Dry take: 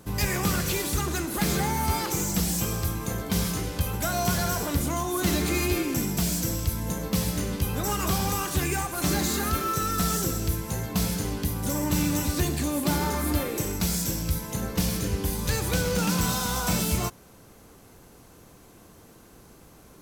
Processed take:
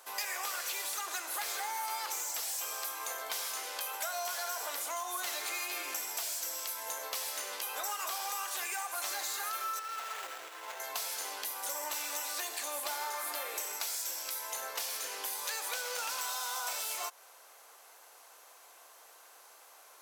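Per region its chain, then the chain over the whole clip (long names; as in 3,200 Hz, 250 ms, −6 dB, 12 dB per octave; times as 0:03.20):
0:09.79–0:10.80: downward compressor, threshold −29 dBFS + windowed peak hold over 9 samples
whole clip: high-pass filter 650 Hz 24 dB per octave; downward compressor, threshold −34 dBFS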